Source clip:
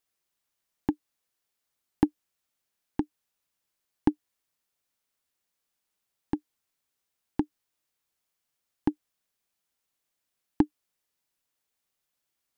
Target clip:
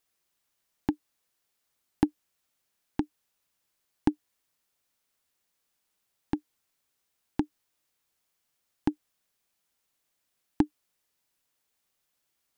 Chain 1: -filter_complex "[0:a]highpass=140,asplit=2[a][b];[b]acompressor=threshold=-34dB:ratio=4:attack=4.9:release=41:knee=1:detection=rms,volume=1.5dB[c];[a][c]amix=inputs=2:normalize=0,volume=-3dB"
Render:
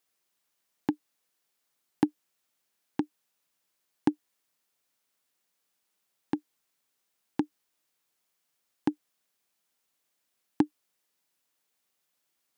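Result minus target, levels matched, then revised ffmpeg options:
125 Hz band -3.5 dB
-filter_complex "[0:a]asplit=2[a][b];[b]acompressor=threshold=-34dB:ratio=4:attack=4.9:release=41:knee=1:detection=rms,volume=1.5dB[c];[a][c]amix=inputs=2:normalize=0,volume=-3dB"

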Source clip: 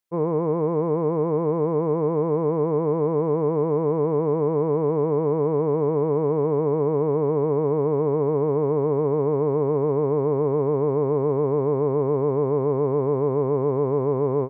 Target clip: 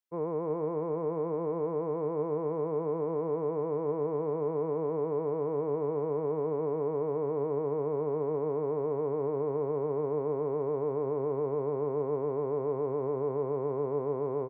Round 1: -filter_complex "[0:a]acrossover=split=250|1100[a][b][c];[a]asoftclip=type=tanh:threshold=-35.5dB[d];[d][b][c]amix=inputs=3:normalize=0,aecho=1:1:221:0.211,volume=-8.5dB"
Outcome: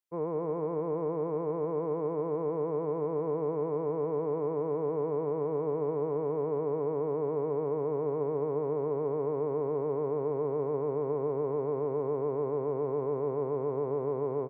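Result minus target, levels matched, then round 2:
echo 90 ms early
-filter_complex "[0:a]acrossover=split=250|1100[a][b][c];[a]asoftclip=type=tanh:threshold=-35.5dB[d];[d][b][c]amix=inputs=3:normalize=0,aecho=1:1:311:0.211,volume=-8.5dB"

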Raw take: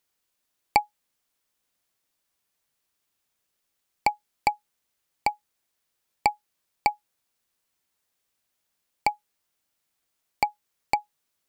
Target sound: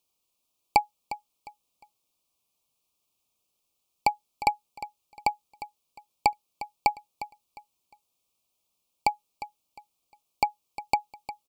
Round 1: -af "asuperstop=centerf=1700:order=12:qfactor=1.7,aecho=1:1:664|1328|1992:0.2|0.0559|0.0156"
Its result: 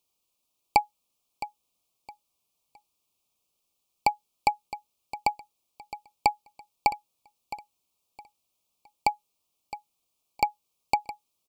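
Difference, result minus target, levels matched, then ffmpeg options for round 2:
echo 0.309 s late
-af "asuperstop=centerf=1700:order=12:qfactor=1.7,aecho=1:1:355|710|1065:0.2|0.0559|0.0156"

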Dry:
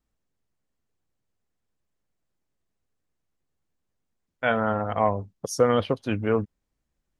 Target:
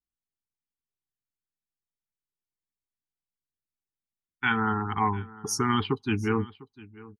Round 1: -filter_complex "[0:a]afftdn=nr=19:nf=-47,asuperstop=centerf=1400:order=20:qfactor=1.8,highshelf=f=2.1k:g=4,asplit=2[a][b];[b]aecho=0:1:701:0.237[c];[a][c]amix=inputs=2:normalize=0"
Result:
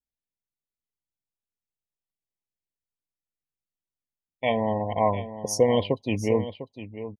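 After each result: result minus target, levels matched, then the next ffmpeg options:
500 Hz band +8.5 dB; echo-to-direct +8 dB
-filter_complex "[0:a]afftdn=nr=19:nf=-47,asuperstop=centerf=580:order=20:qfactor=1.8,highshelf=f=2.1k:g=4,asplit=2[a][b];[b]aecho=0:1:701:0.237[c];[a][c]amix=inputs=2:normalize=0"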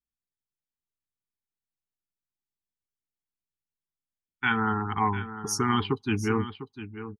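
echo-to-direct +8 dB
-filter_complex "[0:a]afftdn=nr=19:nf=-47,asuperstop=centerf=580:order=20:qfactor=1.8,highshelf=f=2.1k:g=4,asplit=2[a][b];[b]aecho=0:1:701:0.0944[c];[a][c]amix=inputs=2:normalize=0"

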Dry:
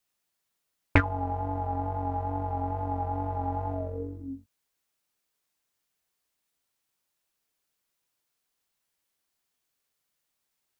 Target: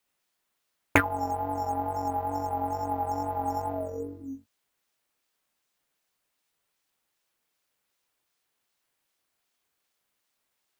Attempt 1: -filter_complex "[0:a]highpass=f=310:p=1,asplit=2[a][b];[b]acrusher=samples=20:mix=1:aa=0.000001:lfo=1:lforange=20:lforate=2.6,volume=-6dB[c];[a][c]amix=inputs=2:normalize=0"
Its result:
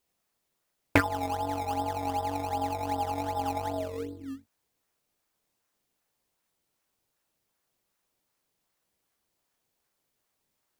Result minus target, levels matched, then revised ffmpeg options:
decimation with a swept rate: distortion +15 dB
-filter_complex "[0:a]highpass=f=310:p=1,asplit=2[a][b];[b]acrusher=samples=5:mix=1:aa=0.000001:lfo=1:lforange=5:lforate=2.6,volume=-6dB[c];[a][c]amix=inputs=2:normalize=0"

